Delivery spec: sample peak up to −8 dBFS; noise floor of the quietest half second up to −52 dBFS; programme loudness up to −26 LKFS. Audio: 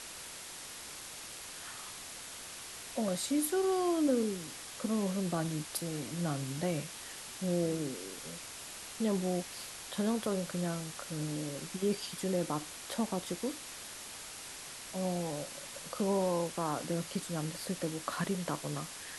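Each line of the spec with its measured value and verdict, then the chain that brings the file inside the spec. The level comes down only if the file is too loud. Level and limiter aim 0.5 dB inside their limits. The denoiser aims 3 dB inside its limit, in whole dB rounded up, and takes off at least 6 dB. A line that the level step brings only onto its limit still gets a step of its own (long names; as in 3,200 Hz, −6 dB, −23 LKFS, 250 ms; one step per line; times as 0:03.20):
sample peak −19.0 dBFS: in spec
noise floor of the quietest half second −46 dBFS: out of spec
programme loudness −36.0 LKFS: in spec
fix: broadband denoise 9 dB, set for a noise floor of −46 dBFS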